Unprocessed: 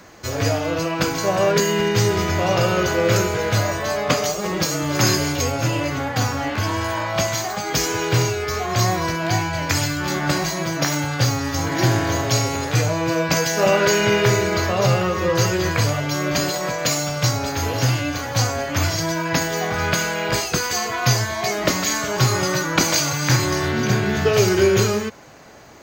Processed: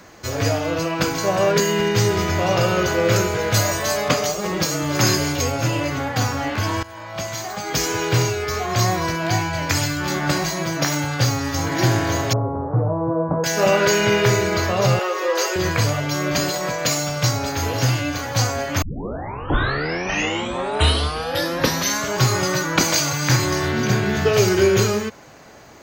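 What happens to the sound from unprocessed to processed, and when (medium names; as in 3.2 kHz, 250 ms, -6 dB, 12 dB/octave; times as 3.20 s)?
3.54–4.09 s: peaking EQ 11 kHz +11 dB 2 oct
6.83–7.90 s: fade in, from -18 dB
12.33–13.44 s: steep low-pass 1.1 kHz
14.99–15.56 s: steep high-pass 370 Hz
18.82 s: tape start 3.29 s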